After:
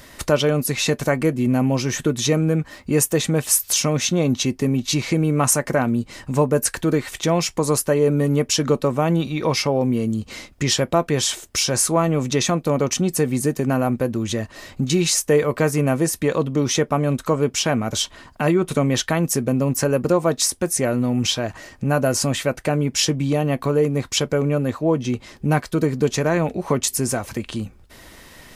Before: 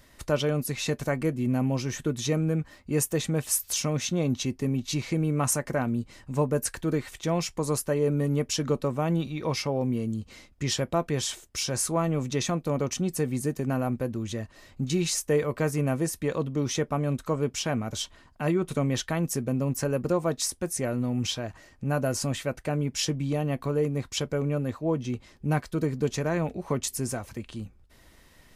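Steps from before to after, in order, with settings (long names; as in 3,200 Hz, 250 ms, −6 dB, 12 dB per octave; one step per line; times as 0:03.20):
low-shelf EQ 120 Hz −7 dB
in parallel at +2.5 dB: downward compressor, threshold −38 dBFS, peak gain reduction 16.5 dB
on the sum: level +6.5 dB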